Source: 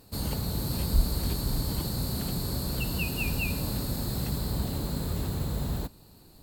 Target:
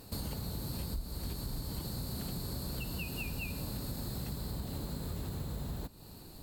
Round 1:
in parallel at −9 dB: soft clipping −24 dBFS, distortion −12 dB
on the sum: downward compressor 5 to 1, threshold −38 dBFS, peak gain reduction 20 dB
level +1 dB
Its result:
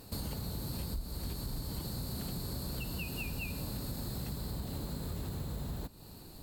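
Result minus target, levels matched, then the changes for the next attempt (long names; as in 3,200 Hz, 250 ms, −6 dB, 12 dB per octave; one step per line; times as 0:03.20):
soft clipping: distortion +11 dB
change: soft clipping −13.5 dBFS, distortion −23 dB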